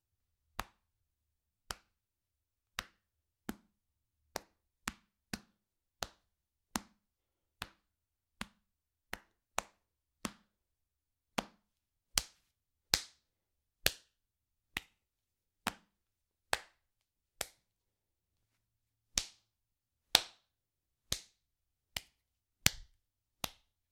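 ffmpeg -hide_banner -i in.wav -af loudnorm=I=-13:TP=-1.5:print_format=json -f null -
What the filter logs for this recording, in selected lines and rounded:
"input_i" : "-39.3",
"input_tp" : "-6.0",
"input_lra" : "12.0",
"input_thresh" : "-50.1",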